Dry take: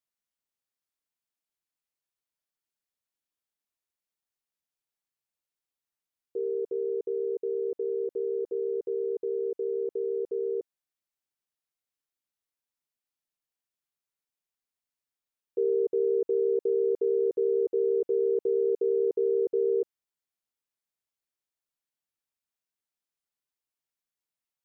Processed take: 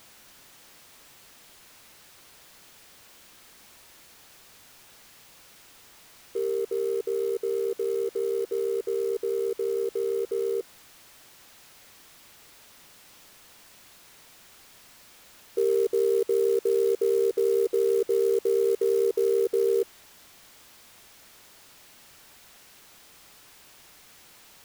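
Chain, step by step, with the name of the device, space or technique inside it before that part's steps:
early CD player with a faulty converter (converter with a step at zero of −45 dBFS; converter with an unsteady clock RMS 0.025 ms)
level +2 dB

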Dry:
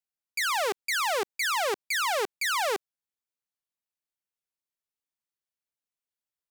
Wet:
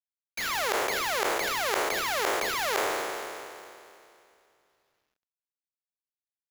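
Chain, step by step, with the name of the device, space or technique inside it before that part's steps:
peak hold with a decay on every bin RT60 2.52 s
early companding sampler (sample-rate reduction 8,600 Hz, jitter 0%; log-companded quantiser 6 bits)
level −6 dB

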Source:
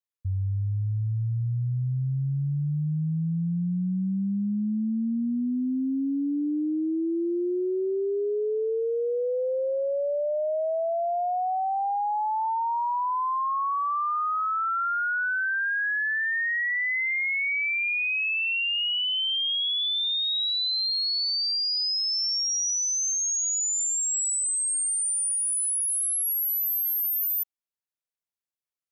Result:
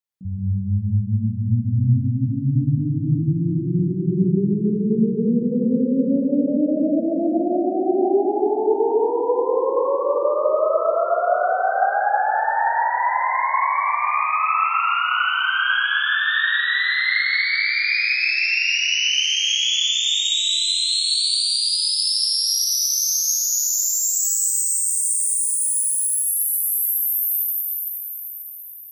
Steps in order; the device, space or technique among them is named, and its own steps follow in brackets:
shimmer-style reverb (pitch-shifted copies added +12 semitones −8 dB; convolution reverb RT60 6.1 s, pre-delay 39 ms, DRR −5 dB)

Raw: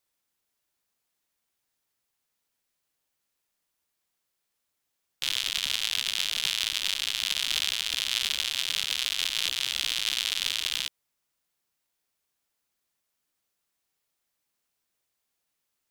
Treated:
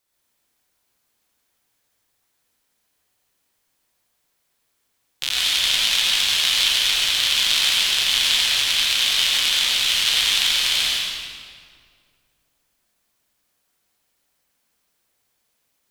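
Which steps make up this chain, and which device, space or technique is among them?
stairwell (convolution reverb RT60 2.1 s, pre-delay 79 ms, DRR −5.5 dB)
level +4 dB

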